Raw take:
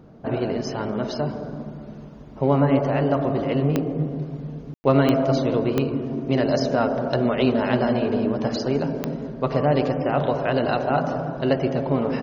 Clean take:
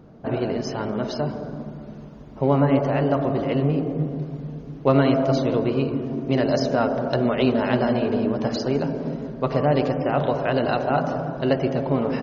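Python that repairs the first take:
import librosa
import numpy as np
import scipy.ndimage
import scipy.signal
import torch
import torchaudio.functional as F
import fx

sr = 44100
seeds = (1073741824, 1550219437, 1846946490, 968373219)

y = fx.fix_declick_ar(x, sr, threshold=10.0)
y = fx.fix_ambience(y, sr, seeds[0], print_start_s=1.91, print_end_s=2.41, start_s=4.74, end_s=4.84)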